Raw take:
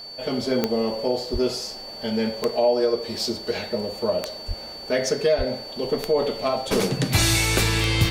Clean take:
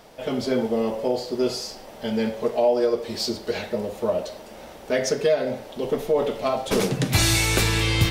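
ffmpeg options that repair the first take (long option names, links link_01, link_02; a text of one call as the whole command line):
ffmpeg -i in.wav -filter_complex "[0:a]adeclick=threshold=4,bandreject=frequency=4500:width=30,asplit=3[link_01][link_02][link_03];[link_01]afade=type=out:start_time=1.32:duration=0.02[link_04];[link_02]highpass=frequency=140:width=0.5412,highpass=frequency=140:width=1.3066,afade=type=in:start_time=1.32:duration=0.02,afade=type=out:start_time=1.44:duration=0.02[link_05];[link_03]afade=type=in:start_time=1.44:duration=0.02[link_06];[link_04][link_05][link_06]amix=inputs=3:normalize=0,asplit=3[link_07][link_08][link_09];[link_07]afade=type=out:start_time=4.47:duration=0.02[link_10];[link_08]highpass=frequency=140:width=0.5412,highpass=frequency=140:width=1.3066,afade=type=in:start_time=4.47:duration=0.02,afade=type=out:start_time=4.59:duration=0.02[link_11];[link_09]afade=type=in:start_time=4.59:duration=0.02[link_12];[link_10][link_11][link_12]amix=inputs=3:normalize=0,asplit=3[link_13][link_14][link_15];[link_13]afade=type=out:start_time=5.37:duration=0.02[link_16];[link_14]highpass=frequency=140:width=0.5412,highpass=frequency=140:width=1.3066,afade=type=in:start_time=5.37:duration=0.02,afade=type=out:start_time=5.49:duration=0.02[link_17];[link_15]afade=type=in:start_time=5.49:duration=0.02[link_18];[link_16][link_17][link_18]amix=inputs=3:normalize=0" out.wav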